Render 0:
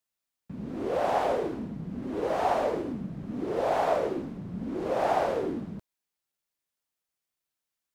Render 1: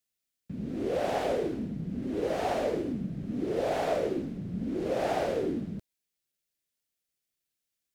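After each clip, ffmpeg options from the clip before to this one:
-af "equalizer=f=1k:w=1.3:g=-12,volume=2dB"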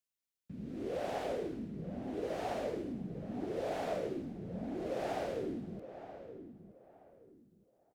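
-filter_complex "[0:a]asplit=2[a][b];[b]adelay=922,lowpass=f=1.5k:p=1,volume=-11dB,asplit=2[c][d];[d]adelay=922,lowpass=f=1.5k:p=1,volume=0.28,asplit=2[e][f];[f]adelay=922,lowpass=f=1.5k:p=1,volume=0.28[g];[a][c][e][g]amix=inputs=4:normalize=0,volume=-8dB"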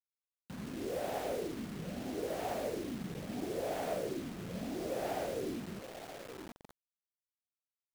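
-af "acrusher=bits=7:mix=0:aa=0.000001"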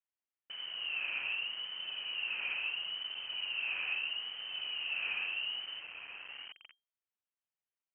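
-af "lowpass=f=2.7k:t=q:w=0.5098,lowpass=f=2.7k:t=q:w=0.6013,lowpass=f=2.7k:t=q:w=0.9,lowpass=f=2.7k:t=q:w=2.563,afreqshift=-3200"

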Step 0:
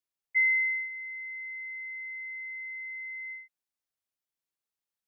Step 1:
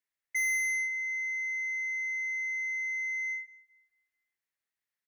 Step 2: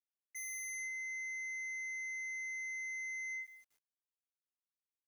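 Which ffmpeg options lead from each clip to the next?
-filter_complex "[0:a]equalizer=f=1.9k:t=o:w=0.62:g=13.5,asoftclip=type=tanh:threshold=-25dB,asplit=2[a][b];[b]adelay=224,lowpass=f=1.9k:p=1,volume=-15.5dB,asplit=2[c][d];[d]adelay=224,lowpass=f=1.9k:p=1,volume=0.43,asplit=2[e][f];[f]adelay=224,lowpass=f=1.9k:p=1,volume=0.43,asplit=2[g][h];[h]adelay=224,lowpass=f=1.9k:p=1,volume=0.43[i];[a][c][e][g][i]amix=inputs=5:normalize=0,volume=-3dB"
-af "bass=f=250:g=8,treble=f=4k:g=13,areverse,acompressor=threshold=-38dB:ratio=6,areverse,aeval=exprs='val(0)*gte(abs(val(0)),0.00106)':c=same,volume=-3dB"

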